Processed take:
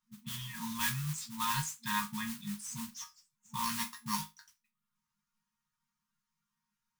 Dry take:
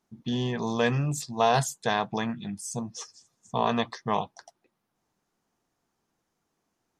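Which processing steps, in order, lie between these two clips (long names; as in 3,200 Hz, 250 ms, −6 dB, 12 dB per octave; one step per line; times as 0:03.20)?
0:03.64–0:04.21: samples sorted by size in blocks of 8 samples
reverb reduction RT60 0.58 s
resonators tuned to a chord D#3 sus4, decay 0.22 s
noise that follows the level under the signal 10 dB
brick-wall band-stop 230–880 Hz
level +7.5 dB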